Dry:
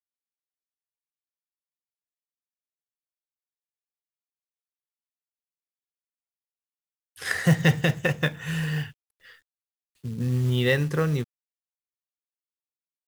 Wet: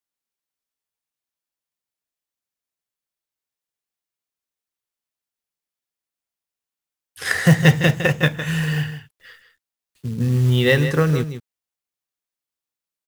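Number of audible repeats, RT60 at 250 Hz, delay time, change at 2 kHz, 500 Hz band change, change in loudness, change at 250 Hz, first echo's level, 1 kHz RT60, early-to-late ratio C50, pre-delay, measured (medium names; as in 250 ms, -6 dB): 1, no reverb, 158 ms, +6.5 dB, +6.5 dB, +6.0 dB, +6.5 dB, -10.5 dB, no reverb, no reverb, no reverb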